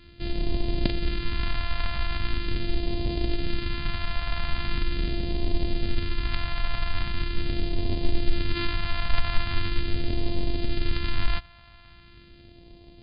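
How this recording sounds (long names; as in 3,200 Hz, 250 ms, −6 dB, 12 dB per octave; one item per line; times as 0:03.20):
a buzz of ramps at a fixed pitch in blocks of 128 samples
phaser sweep stages 2, 0.41 Hz, lowest notch 360–1,300 Hz
MP2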